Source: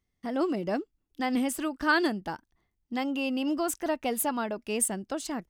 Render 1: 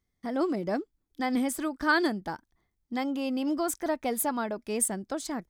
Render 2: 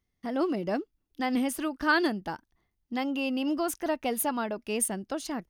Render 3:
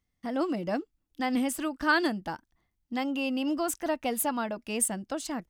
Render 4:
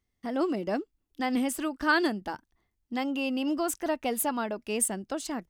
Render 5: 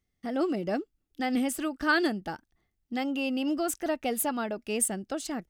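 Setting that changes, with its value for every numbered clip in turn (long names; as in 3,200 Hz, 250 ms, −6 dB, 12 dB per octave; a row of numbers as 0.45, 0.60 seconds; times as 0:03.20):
notch filter, centre frequency: 2,800, 7,700, 400, 160, 1,000 Hertz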